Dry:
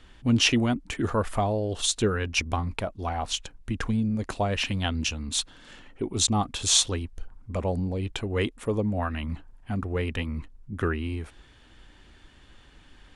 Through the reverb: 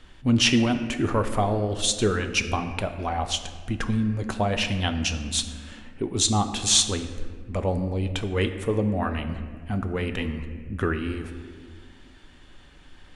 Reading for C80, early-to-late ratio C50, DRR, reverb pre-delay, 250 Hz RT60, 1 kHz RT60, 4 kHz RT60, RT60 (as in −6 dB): 10.5 dB, 9.5 dB, 7.0 dB, 4 ms, 2.6 s, 1.4 s, 1.1 s, 1.7 s